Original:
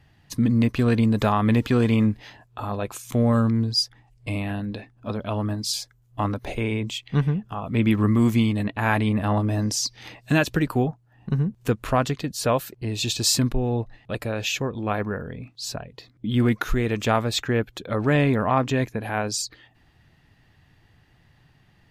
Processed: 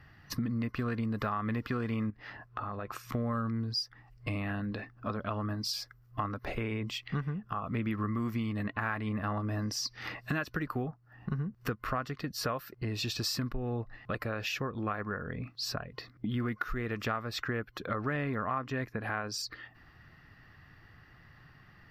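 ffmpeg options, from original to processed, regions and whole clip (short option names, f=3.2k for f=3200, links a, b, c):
-filter_complex "[0:a]asettb=1/sr,asplit=3[a][b][c];[a]atrim=end=2.104[d];[b]atrim=start=2.1:end=3.15,asetpts=PTS-STARTPTS,afade=t=in:d=0.004:c=qsin,afade=t=out:st=1.046:d=0.004:c=qsin,highshelf=f=4.2k:g=-8.5,acompressor=threshold=-36dB:ratio=4:attack=3.2:release=140:knee=1:detection=peak[e];[c]atrim=start=3.146[f];[d][e]acrossfade=d=0.004:c1=hsin:c2=qsin[g];[g][f]acrossfade=d=0.004:c1=qsin:c2=hsin,superequalizer=10b=2.82:11b=2:13b=0.631:15b=0.316:16b=0.316,acompressor=threshold=-33dB:ratio=4"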